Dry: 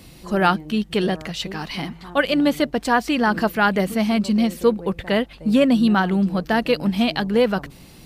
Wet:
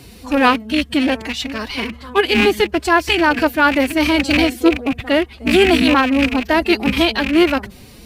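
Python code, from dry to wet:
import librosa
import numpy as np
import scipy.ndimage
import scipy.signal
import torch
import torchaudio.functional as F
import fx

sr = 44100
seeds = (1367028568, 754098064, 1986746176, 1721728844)

y = fx.rattle_buzz(x, sr, strikes_db=-30.0, level_db=-17.0)
y = fx.pitch_keep_formants(y, sr, semitones=6.0)
y = y * 10.0 ** (4.5 / 20.0)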